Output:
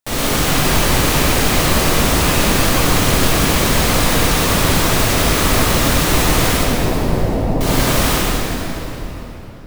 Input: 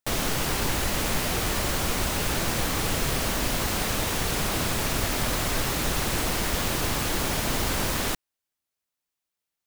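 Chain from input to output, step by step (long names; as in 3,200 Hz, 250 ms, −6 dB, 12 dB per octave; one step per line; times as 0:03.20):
0:06.53–0:07.61: Chebyshev low-pass filter 750 Hz, order 3
convolution reverb RT60 3.8 s, pre-delay 18 ms, DRR −9 dB
level +2.5 dB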